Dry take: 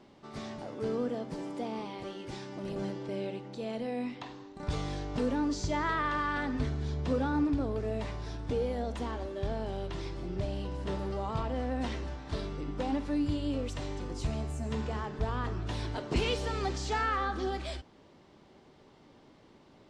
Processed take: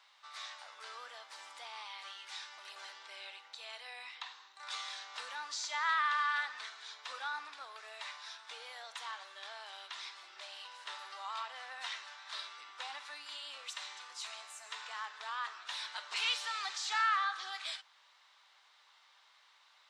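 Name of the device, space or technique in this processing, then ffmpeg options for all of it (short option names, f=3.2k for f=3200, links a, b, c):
headphones lying on a table: -af "highpass=f=1.1k:w=0.5412,highpass=f=1.1k:w=1.3066,equalizer=f=3.8k:t=o:w=0.21:g=6,volume=2dB"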